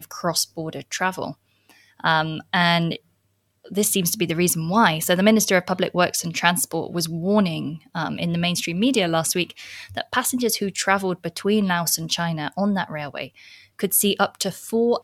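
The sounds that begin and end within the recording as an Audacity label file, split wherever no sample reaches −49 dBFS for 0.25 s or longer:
1.690000	2.990000	sound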